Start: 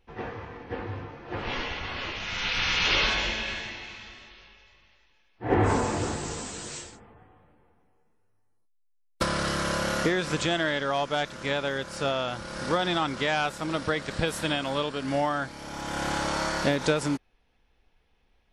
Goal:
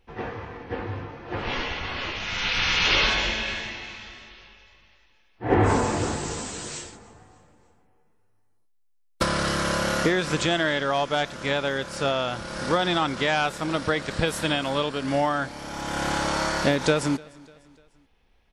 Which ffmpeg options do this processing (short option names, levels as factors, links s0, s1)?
-af "aecho=1:1:298|596|894:0.0631|0.029|0.0134,volume=1.41"